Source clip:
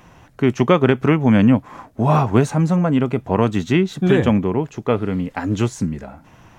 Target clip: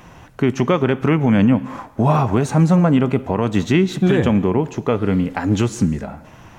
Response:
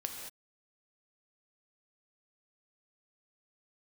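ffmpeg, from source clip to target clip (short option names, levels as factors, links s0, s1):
-filter_complex "[0:a]alimiter=limit=0.299:level=0:latency=1:release=174,asplit=2[s0][s1];[1:a]atrim=start_sample=2205[s2];[s1][s2]afir=irnorm=-1:irlink=0,volume=0.299[s3];[s0][s3]amix=inputs=2:normalize=0,volume=1.33"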